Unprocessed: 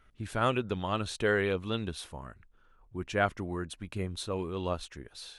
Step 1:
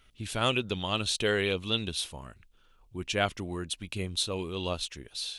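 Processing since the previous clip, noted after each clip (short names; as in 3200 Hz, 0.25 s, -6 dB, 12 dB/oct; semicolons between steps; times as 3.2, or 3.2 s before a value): resonant high shelf 2200 Hz +8.5 dB, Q 1.5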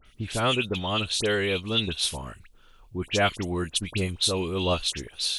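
dispersion highs, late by 58 ms, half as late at 2300 Hz; vocal rider within 3 dB 0.5 s; gain +5 dB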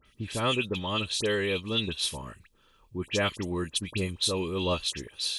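notch comb 720 Hz; gain -2 dB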